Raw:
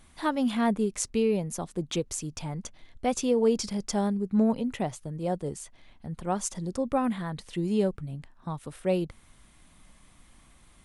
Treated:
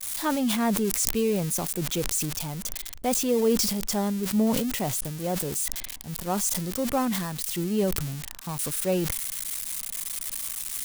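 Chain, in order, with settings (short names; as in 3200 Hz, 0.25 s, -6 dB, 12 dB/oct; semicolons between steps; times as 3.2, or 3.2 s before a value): switching spikes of -24 dBFS; expander -36 dBFS; sustainer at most 34 dB/s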